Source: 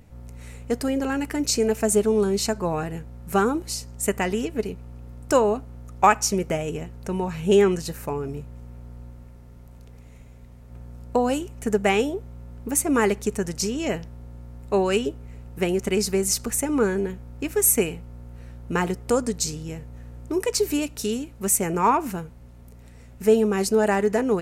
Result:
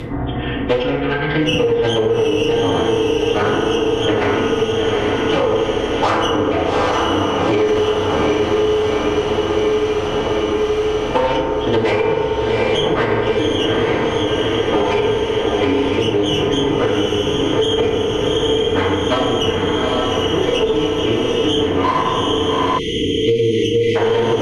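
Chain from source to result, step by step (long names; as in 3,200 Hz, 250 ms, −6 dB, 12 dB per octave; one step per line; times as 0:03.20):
hearing-aid frequency compression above 2,200 Hz 4 to 1
notch comb filter 280 Hz
in parallel at −8 dB: hard clipping −20.5 dBFS, distortion −8 dB
on the sum: harmonic generator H 6 −19 dB, 7 −23 dB, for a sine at −4.5 dBFS
phase-vocoder pitch shift with formants kept −11 semitones
on a send: feedback delay with all-pass diffusion 826 ms, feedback 67%, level −4.5 dB
on the sum: feedback delay network reverb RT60 1.3 s, low-frequency decay 0.9×, high-frequency decay 0.35×, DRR −6.5 dB
time-frequency box erased 0:22.78–0:23.96, 490–1,900 Hz
boost into a limiter +5 dB
multiband upward and downward compressor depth 100%
level −6.5 dB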